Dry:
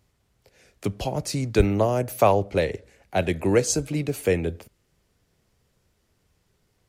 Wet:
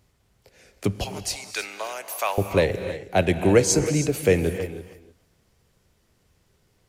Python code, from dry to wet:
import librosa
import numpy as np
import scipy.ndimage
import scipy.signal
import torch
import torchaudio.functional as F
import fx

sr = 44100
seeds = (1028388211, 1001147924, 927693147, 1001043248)

y = fx.highpass(x, sr, hz=1400.0, slope=12, at=(1.04, 2.38))
y = y + 10.0 ** (-15.5 / 20.0) * np.pad(y, (int(322 * sr / 1000.0), 0))[:len(y)]
y = fx.rev_gated(y, sr, seeds[0], gate_ms=330, shape='rising', drr_db=10.0)
y = y * 10.0 ** (3.0 / 20.0)